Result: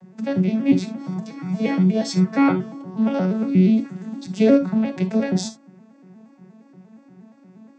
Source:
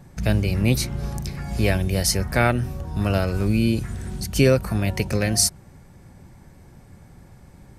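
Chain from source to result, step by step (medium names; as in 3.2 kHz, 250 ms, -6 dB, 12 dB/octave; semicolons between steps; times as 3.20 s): vocoder on a broken chord minor triad, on F#3, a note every 118 ms; 0.97–2.84 s: comb 6.3 ms, depth 77%; gated-style reverb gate 90 ms flat, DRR 8.5 dB; trim +2.5 dB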